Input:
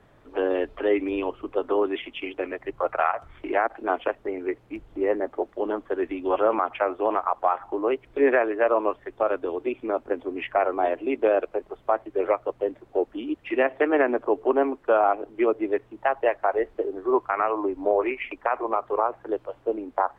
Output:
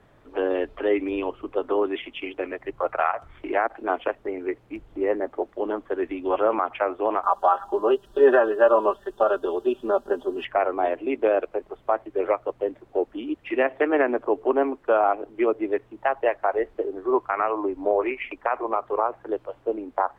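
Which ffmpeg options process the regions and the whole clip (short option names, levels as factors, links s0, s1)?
-filter_complex "[0:a]asettb=1/sr,asplit=3[s0][s1][s2];[s0]atrim=end=7.234[s3];[s1]atrim=start=7.23:end=10.45,asetpts=PTS-STARTPTS,afade=t=in:d=0.004:c=qsin,afade=t=out:st=3.216:d=0.004:c=qsin,asuperstop=centerf=2200:order=4:qfactor=1.6,highshelf=f=2600:g=11.5,aecho=1:1:5.1:0.83,atrim=end_sample=142002[s4];[s2]atrim=start=10.446[s5];[s3][s4]acrossfade=d=0.004:c1=hsin:c2=qsin[s6];[s6][s5]acrossfade=d=0.004:c1=qsin:c2=hsin"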